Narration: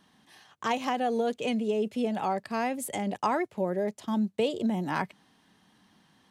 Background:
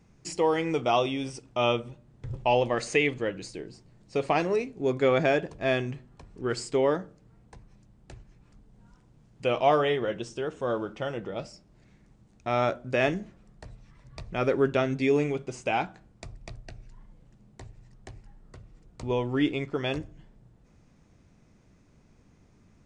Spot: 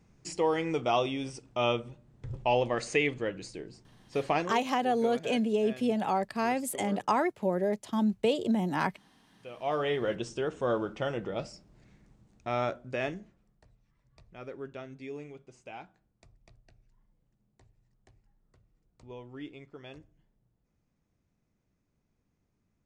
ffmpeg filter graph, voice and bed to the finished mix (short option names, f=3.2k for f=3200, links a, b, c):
-filter_complex "[0:a]adelay=3850,volume=0.5dB[a];[1:a]volume=16dB,afade=t=out:st=4.36:d=0.24:silence=0.158489,afade=t=in:st=9.55:d=0.59:silence=0.112202,afade=t=out:st=11.58:d=2.07:silence=0.133352[b];[a][b]amix=inputs=2:normalize=0"